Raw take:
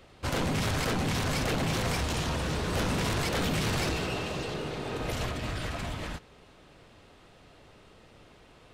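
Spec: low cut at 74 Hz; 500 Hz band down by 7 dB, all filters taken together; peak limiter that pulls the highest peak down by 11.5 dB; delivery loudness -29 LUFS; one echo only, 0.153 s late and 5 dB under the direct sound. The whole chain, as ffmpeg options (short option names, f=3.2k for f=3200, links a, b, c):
-af "highpass=74,equalizer=f=500:t=o:g=-9,alimiter=level_in=7dB:limit=-24dB:level=0:latency=1,volume=-7dB,aecho=1:1:153:0.562,volume=8.5dB"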